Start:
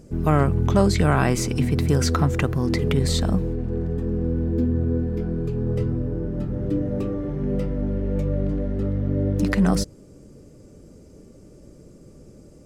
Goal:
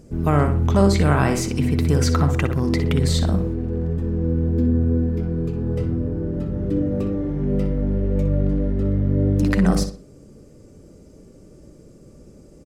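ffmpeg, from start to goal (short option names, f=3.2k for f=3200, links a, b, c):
-filter_complex "[0:a]asplit=2[a][b];[b]adelay=61,lowpass=f=3.9k:p=1,volume=-7dB,asplit=2[c][d];[d]adelay=61,lowpass=f=3.9k:p=1,volume=0.36,asplit=2[e][f];[f]adelay=61,lowpass=f=3.9k:p=1,volume=0.36,asplit=2[g][h];[h]adelay=61,lowpass=f=3.9k:p=1,volume=0.36[i];[a][c][e][g][i]amix=inputs=5:normalize=0"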